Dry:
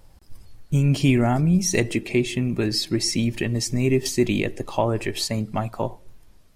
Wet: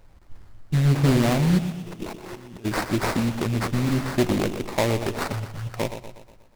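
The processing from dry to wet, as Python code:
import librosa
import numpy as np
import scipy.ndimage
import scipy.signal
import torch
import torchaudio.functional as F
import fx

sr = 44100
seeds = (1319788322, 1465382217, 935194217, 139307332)

y = fx.over_compress(x, sr, threshold_db=-40.0, ratio=-1.0, at=(1.58, 2.64), fade=0.02)
y = fx.spec_repair(y, sr, seeds[0], start_s=3.79, length_s=0.31, low_hz=370.0, high_hz=7700.0, source='after')
y = fx.ellip_bandstop(y, sr, low_hz=140.0, high_hz=1600.0, order=3, stop_db=40, at=(5.32, 5.74))
y = fx.sample_hold(y, sr, seeds[1], rate_hz=3100.0, jitter_pct=20)
y = fx.echo_feedback(y, sr, ms=121, feedback_pct=51, wet_db=-10.0)
y = fx.doppler_dist(y, sr, depth_ms=0.68)
y = y * librosa.db_to_amplitude(-1.0)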